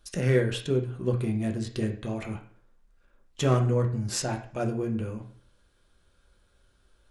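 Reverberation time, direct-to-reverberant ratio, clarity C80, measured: 0.50 s, 1.0 dB, 14.0 dB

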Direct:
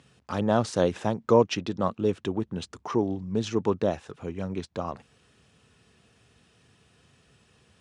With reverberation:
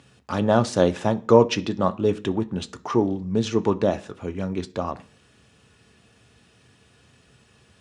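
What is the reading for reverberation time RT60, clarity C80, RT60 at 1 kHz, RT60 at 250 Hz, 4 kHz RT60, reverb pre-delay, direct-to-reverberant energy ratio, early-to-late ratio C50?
0.40 s, 24.5 dB, 0.40 s, 0.55 s, 0.50 s, 3 ms, 9.0 dB, 20.0 dB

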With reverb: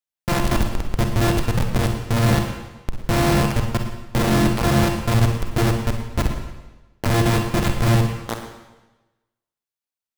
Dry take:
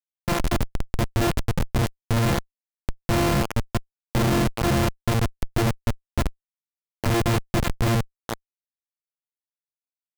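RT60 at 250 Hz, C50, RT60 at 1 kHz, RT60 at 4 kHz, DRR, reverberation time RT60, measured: 1.1 s, 4.5 dB, 1.1 s, 1.0 s, 3.5 dB, 1.1 s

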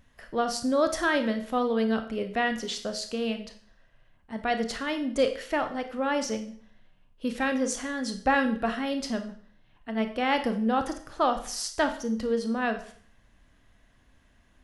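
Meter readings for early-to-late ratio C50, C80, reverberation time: 10.5 dB, 14.5 dB, 0.50 s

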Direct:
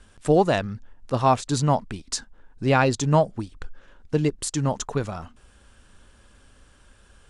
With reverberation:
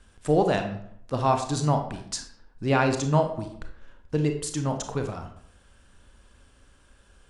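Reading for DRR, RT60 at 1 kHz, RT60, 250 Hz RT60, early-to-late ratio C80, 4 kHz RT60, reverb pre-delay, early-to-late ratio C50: 5.0 dB, 0.65 s, 0.65 s, 0.75 s, 11.5 dB, 0.45 s, 28 ms, 8.0 dB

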